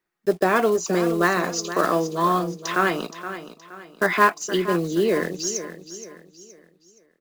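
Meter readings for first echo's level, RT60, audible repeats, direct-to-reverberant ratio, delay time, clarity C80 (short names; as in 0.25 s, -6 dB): -12.0 dB, none, 3, none, 0.471 s, none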